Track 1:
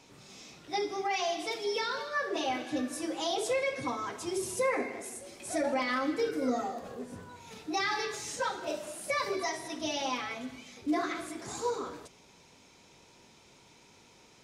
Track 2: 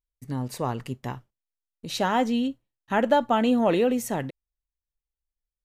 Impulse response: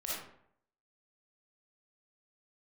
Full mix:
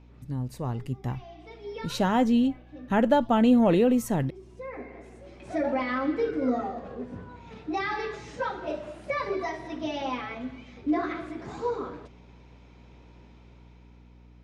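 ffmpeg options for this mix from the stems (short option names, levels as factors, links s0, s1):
-filter_complex "[0:a]lowpass=2700,volume=0.501[s0];[1:a]lowshelf=f=130:g=11.5,volume=0.299,asplit=2[s1][s2];[s2]apad=whole_len=636470[s3];[s0][s3]sidechaincompress=threshold=0.00316:ratio=16:attack=9.3:release=966[s4];[s4][s1]amix=inputs=2:normalize=0,lowshelf=f=410:g=5.5,dynaudnorm=f=200:g=11:m=2.24,aeval=exprs='val(0)+0.00282*(sin(2*PI*60*n/s)+sin(2*PI*2*60*n/s)/2+sin(2*PI*3*60*n/s)/3+sin(2*PI*4*60*n/s)/4+sin(2*PI*5*60*n/s)/5)':c=same"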